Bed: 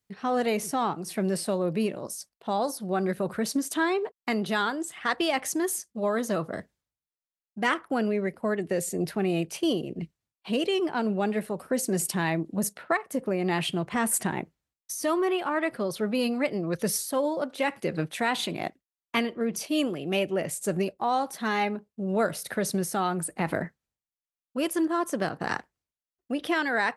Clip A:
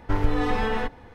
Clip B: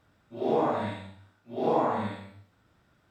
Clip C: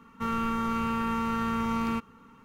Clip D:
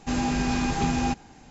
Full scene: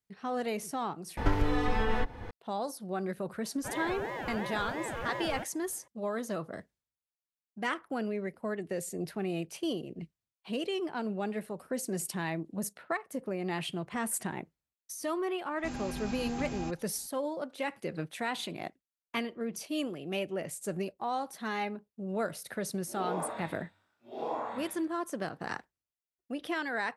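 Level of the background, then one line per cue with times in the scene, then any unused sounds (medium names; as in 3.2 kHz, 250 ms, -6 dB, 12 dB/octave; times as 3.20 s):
bed -7.5 dB
1.17 s: replace with A -5 dB + three bands compressed up and down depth 100%
3.44 s: add C -6 dB + ring modulator with a swept carrier 510 Hz, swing 55%, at 2.9 Hz
15.57 s: add D -13.5 dB
22.55 s: add B -7 dB + high-pass 580 Hz 6 dB/octave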